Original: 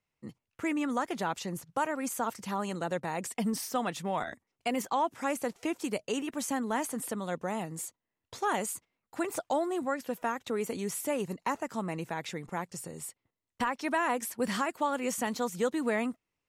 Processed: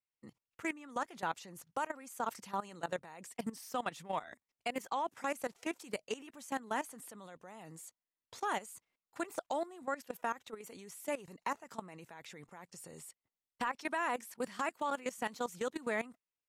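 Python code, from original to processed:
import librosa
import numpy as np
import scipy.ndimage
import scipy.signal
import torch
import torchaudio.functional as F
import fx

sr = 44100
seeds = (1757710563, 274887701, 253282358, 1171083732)

y = fx.low_shelf(x, sr, hz=460.0, db=-7.5)
y = fx.level_steps(y, sr, step_db=17)
y = fx.doppler_dist(y, sr, depth_ms=0.1)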